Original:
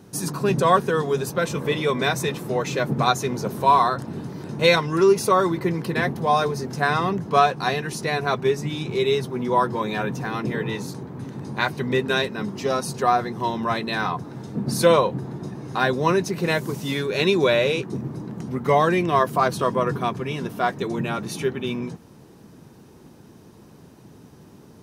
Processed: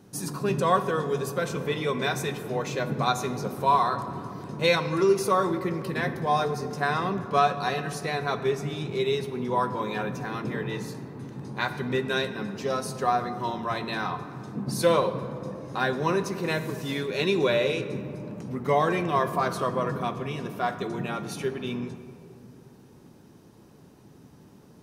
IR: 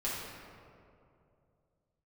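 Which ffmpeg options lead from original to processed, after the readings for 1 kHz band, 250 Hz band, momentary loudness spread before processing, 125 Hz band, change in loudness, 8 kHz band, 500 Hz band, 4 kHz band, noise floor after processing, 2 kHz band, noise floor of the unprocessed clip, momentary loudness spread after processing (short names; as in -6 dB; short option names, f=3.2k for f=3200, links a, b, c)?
-4.5 dB, -5.0 dB, 11 LU, -5.0 dB, -5.0 dB, -5.5 dB, -5.0 dB, -5.5 dB, -52 dBFS, -5.0 dB, -48 dBFS, 12 LU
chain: -filter_complex "[0:a]asplit=2[a][b];[1:a]atrim=start_sample=2205[c];[b][c]afir=irnorm=-1:irlink=0,volume=-11.5dB[d];[a][d]amix=inputs=2:normalize=0,volume=-7dB"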